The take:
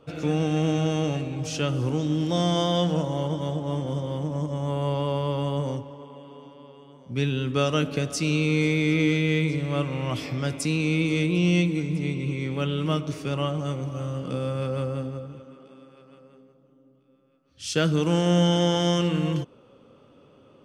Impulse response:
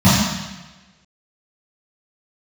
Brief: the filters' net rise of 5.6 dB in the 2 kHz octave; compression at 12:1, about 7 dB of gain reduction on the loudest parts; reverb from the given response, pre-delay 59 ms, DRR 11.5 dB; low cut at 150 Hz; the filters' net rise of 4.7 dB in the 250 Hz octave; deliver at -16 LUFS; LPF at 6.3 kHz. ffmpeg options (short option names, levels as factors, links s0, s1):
-filter_complex "[0:a]highpass=150,lowpass=6300,equalizer=f=250:t=o:g=8.5,equalizer=f=2000:t=o:g=7,acompressor=threshold=0.0891:ratio=12,asplit=2[s0][s1];[1:a]atrim=start_sample=2205,adelay=59[s2];[s1][s2]afir=irnorm=-1:irlink=0,volume=0.0141[s3];[s0][s3]amix=inputs=2:normalize=0,volume=2.51"